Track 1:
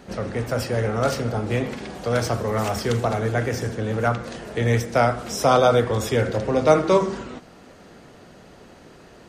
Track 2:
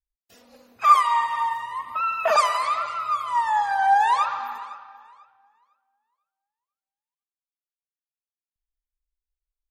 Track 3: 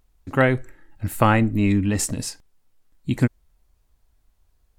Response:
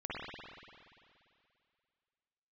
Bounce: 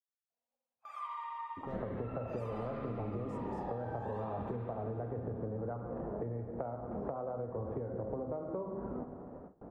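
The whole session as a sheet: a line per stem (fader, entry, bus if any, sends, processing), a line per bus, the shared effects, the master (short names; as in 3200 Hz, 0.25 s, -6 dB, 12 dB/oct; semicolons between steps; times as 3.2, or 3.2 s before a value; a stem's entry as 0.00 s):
-3.0 dB, 1.65 s, no bus, send -12.5 dB, LPF 1000 Hz 24 dB/oct; compressor 16:1, threshold -28 dBFS, peak gain reduction 19 dB
-14.5 dB, 0.00 s, bus A, send -14 dB, resonant low shelf 520 Hz -7.5 dB, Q 1.5
-13.5 dB, 1.30 s, bus A, send -23.5 dB, overdrive pedal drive 25 dB, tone 1300 Hz, clips at -2.5 dBFS
bus A: 0.0 dB, ladder low-pass 1200 Hz, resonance 30%; compressor 6:1, threshold -43 dBFS, peak gain reduction 14 dB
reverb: on, RT60 2.4 s, pre-delay 48 ms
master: gate with hold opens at -39 dBFS; compressor, threshold -35 dBFS, peak gain reduction 8 dB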